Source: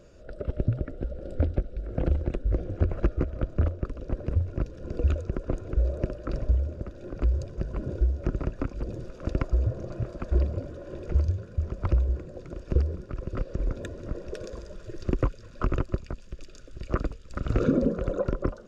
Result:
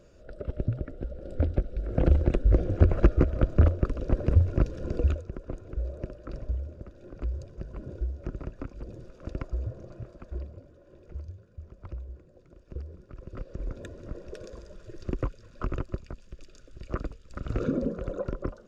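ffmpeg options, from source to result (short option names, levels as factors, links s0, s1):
-af "volume=5.96,afade=t=in:st=1.23:d=1.09:silence=0.398107,afade=t=out:st=4.78:d=0.46:silence=0.237137,afade=t=out:st=9.65:d=0.98:silence=0.398107,afade=t=in:st=12.72:d=1.16:silence=0.298538"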